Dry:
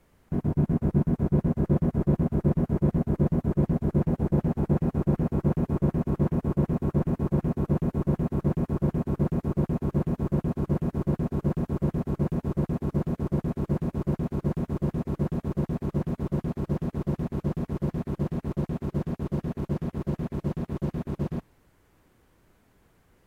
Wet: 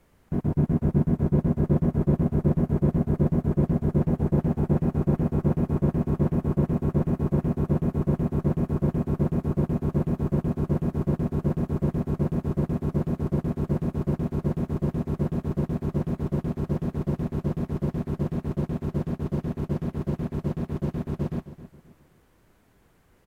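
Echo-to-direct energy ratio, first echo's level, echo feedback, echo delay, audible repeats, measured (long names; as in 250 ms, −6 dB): −14.0 dB, −14.5 dB, 34%, 265 ms, 3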